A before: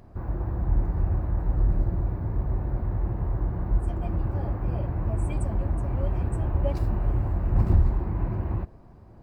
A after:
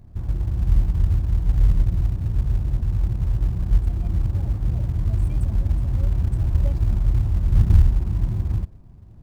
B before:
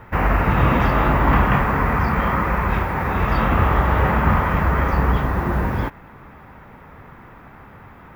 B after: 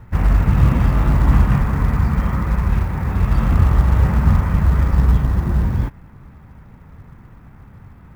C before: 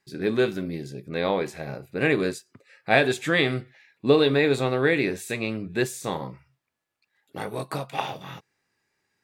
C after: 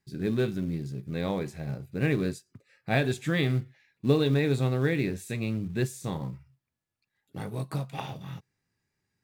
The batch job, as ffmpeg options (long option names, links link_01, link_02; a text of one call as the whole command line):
ffmpeg -i in.wav -filter_complex "[0:a]bass=frequency=250:gain=15,treble=frequency=4000:gain=3,asplit=2[link_01][link_02];[link_02]acrusher=bits=4:mode=log:mix=0:aa=0.000001,volume=-10dB[link_03];[link_01][link_03]amix=inputs=2:normalize=0,volume=-11.5dB" out.wav